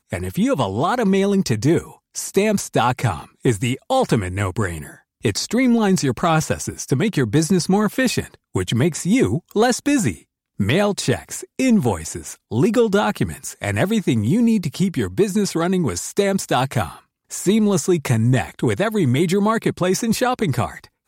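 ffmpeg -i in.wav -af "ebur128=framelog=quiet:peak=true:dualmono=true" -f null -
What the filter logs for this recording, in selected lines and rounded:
Integrated loudness:
  I:         -16.7 LUFS
  Threshold: -26.9 LUFS
Loudness range:
  LRA:         1.6 LU
  Threshold: -36.9 LUFS
  LRA low:   -17.6 LUFS
  LRA high:  -16.0 LUFS
True peak:
  Peak:       -6.0 dBFS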